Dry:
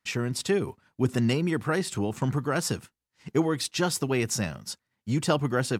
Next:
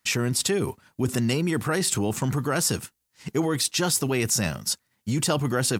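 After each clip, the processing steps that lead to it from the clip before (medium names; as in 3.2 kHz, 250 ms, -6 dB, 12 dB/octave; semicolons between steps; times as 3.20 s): treble shelf 5.8 kHz +11.5 dB; in parallel at 0 dB: compressor with a negative ratio -30 dBFS; on the sum: trim -2.5 dB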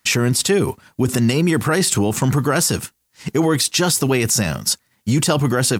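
peak limiter -15.5 dBFS, peak gain reduction 5.5 dB; trim +8.5 dB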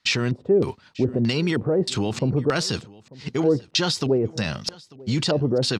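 LFO low-pass square 1.6 Hz 510–4300 Hz; delay 893 ms -22.5 dB; trim -6.5 dB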